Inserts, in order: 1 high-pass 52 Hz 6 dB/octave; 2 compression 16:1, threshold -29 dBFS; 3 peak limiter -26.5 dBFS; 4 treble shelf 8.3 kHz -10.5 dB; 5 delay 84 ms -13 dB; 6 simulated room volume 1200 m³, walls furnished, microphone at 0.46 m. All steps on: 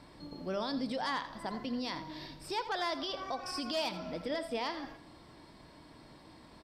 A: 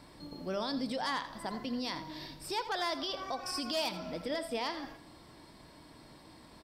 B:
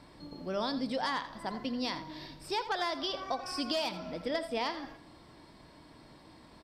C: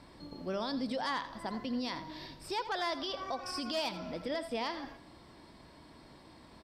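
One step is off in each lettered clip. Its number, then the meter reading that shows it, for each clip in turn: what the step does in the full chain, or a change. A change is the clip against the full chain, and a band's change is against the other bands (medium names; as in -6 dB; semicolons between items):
4, 8 kHz band +4.5 dB; 3, crest factor change +2.5 dB; 6, echo-to-direct -10.5 dB to -13.0 dB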